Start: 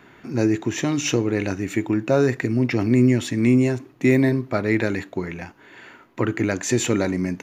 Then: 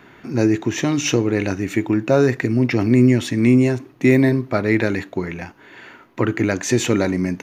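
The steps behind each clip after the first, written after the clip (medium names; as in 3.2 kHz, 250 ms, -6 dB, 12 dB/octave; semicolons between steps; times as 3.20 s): band-stop 7.2 kHz, Q 13; trim +3 dB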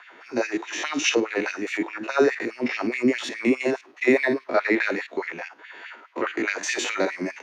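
spectrogram pixelated in time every 50 ms; LFO high-pass sine 4.8 Hz 220–2500 Hz; three-band isolator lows -14 dB, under 440 Hz, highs -19 dB, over 7.5 kHz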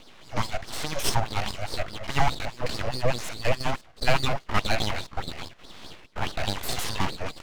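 full-wave rectifier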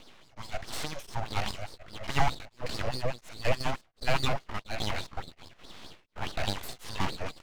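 tremolo of two beating tones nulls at 1.4 Hz; trim -2.5 dB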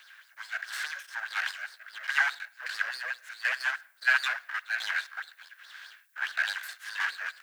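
resonant high-pass 1.6 kHz, resonance Q 11; added noise violet -67 dBFS; on a send at -21.5 dB: reverberation RT60 0.70 s, pre-delay 47 ms; on the sum: trim -2.5 dB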